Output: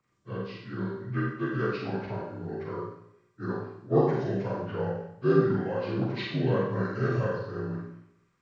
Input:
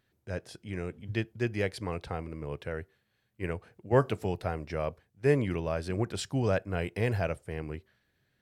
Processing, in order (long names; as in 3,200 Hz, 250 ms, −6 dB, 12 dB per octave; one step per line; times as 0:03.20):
partials spread apart or drawn together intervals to 80%
four-comb reverb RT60 0.75 s, combs from 32 ms, DRR −2 dB